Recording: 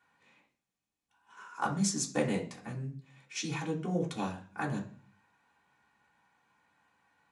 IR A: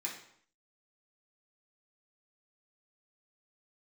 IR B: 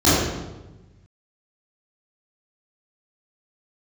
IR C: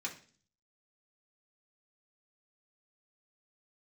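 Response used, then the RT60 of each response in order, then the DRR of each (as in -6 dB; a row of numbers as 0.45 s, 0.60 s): C; 0.65 s, 1.1 s, 0.40 s; -4.5 dB, -13.0 dB, -3.5 dB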